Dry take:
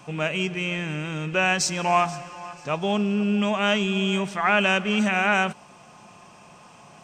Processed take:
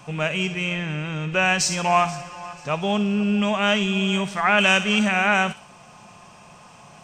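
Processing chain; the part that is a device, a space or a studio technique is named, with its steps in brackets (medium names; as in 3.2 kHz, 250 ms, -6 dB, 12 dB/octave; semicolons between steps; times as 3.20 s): 0.73–1.32 s: distance through air 74 m; low shelf boost with a cut just above (bass shelf 82 Hz +6.5 dB; peaking EQ 320 Hz -4.5 dB 0.81 oct); feedback echo behind a high-pass 62 ms, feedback 35%, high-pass 2.7 kHz, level -8 dB; 4.58–4.99 s: treble shelf 3.6 kHz +8.5 dB; trim +2 dB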